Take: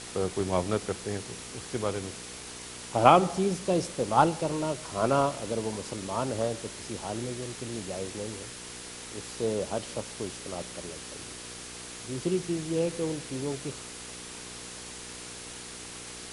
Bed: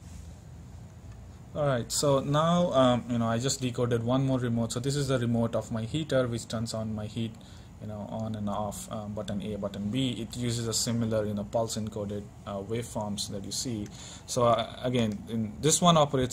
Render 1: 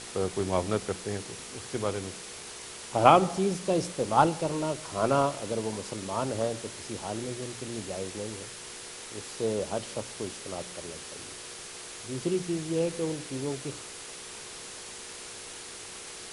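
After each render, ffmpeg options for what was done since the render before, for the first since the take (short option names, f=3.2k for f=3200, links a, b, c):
-af "bandreject=f=60:t=h:w=4,bandreject=f=120:t=h:w=4,bandreject=f=180:t=h:w=4,bandreject=f=240:t=h:w=4,bandreject=f=300:t=h:w=4"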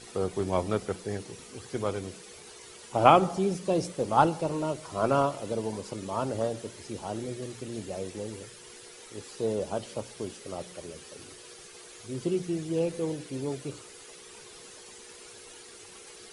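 -af "afftdn=nr=10:nf=-43"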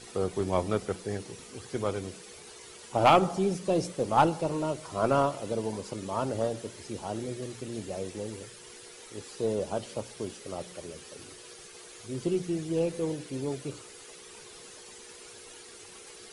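-filter_complex "[0:a]aeval=exprs='0.668*(cos(1*acos(clip(val(0)/0.668,-1,1)))-cos(1*PI/2))+0.015*(cos(6*acos(clip(val(0)/0.668,-1,1)))-cos(6*PI/2))':c=same,acrossover=split=2200[a][b];[a]asoftclip=type=hard:threshold=-13.5dB[c];[c][b]amix=inputs=2:normalize=0"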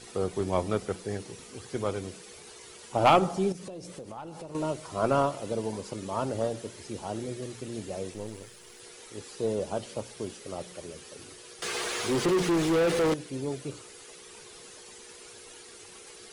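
-filter_complex "[0:a]asettb=1/sr,asplit=3[a][b][c];[a]atrim=end=3.524[d];[b]atrim=start=3.52:end=4.55,asetpts=PTS-STARTPTS,afade=t=in:d=0.004:c=qsin,afade=t=out:st=1.026:d=0.004:c=qsin,acompressor=threshold=-38dB:ratio=8:attack=3.2:release=140:knee=1:detection=peak[e];[c]atrim=start=4.546[f];[d][e]acrossfade=d=0.004:c1=hsin:c2=qsin[g];[g][f]acrossfade=d=0.004:c1=qsin:c2=hsin,asettb=1/sr,asplit=3[h][i][j];[h]atrim=end=8.144[k];[i]atrim=start=8.14:end=8.8,asetpts=PTS-STARTPTS,afade=t=in:d=0.004:c=qsin,afade=t=out:st=0.656:d=0.004:c=qsin,aeval=exprs='if(lt(val(0),0),0.447*val(0),val(0))':c=same[l];[j]atrim=start=8.796[m];[k][l]acrossfade=d=0.004:c1=hsin:c2=qsin[n];[n][m]acrossfade=d=0.004:c1=qsin:c2=hsin,asettb=1/sr,asplit=3[o][p][q];[o]atrim=end=11.624[r];[p]atrim=start=11.62:end=13.14,asetpts=PTS-STARTPTS,afade=t=in:d=0.004:c=qsin,afade=t=out:st=1.516:d=0.004:c=qsin,asplit=2[s][t];[t]highpass=f=720:p=1,volume=32dB,asoftclip=type=tanh:threshold=-17.5dB[u];[s][u]amix=inputs=2:normalize=0,lowpass=f=2.4k:p=1,volume=-6dB[v];[q]atrim=start=13.136[w];[r][v]acrossfade=d=0.004:c1=hsin:c2=qsin[x];[x][w]acrossfade=d=0.004:c1=qsin:c2=hsin"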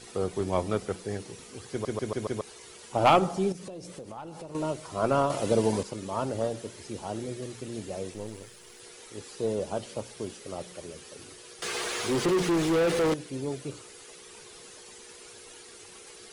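-filter_complex "[0:a]asplit=8[a][b][c][d][e][f][g][h];[a]atrim=end=1.852[i];[b]atrim=start=1.708:end=1.852[j];[c]atrim=start=1.708:end=1.852[k];[d]atrim=start=1.708:end=1.852[l];[e]atrim=start=1.708:end=1.852[m];[f]atrim=start=2.408:end=5.302[n];[g]atrim=start=5.298:end=5.832,asetpts=PTS-STARTPTS,volume=7.5dB[o];[h]atrim=start=5.828[p];[i][j]acrossfade=d=0.004:c1=hsin:c2=hsin[q];[q][k]acrossfade=d=0.004:c1=hsin:c2=hsin[r];[r][l]acrossfade=d=0.004:c1=hsin:c2=hsin[s];[s][m]acrossfade=d=0.004:c1=hsin:c2=hsin[t];[t][n]acrossfade=d=0.004:c1=hsin:c2=hsin[u];[u][o]acrossfade=d=0.004:c1=hsin:c2=hsin[v];[v][p]acrossfade=d=0.004:c1=hsin:c2=hsin"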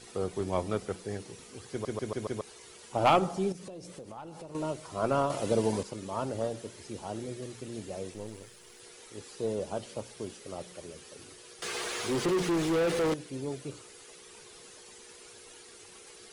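-af "volume=-3dB"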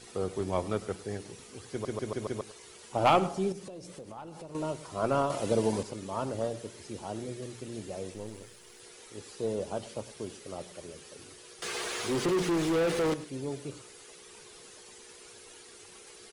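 -filter_complex "[0:a]asplit=2[a][b];[b]adelay=105,volume=-17dB,highshelf=f=4k:g=-2.36[c];[a][c]amix=inputs=2:normalize=0"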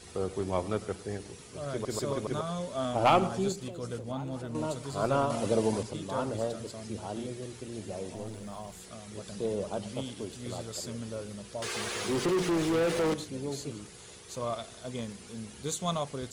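-filter_complex "[1:a]volume=-10.5dB[a];[0:a][a]amix=inputs=2:normalize=0"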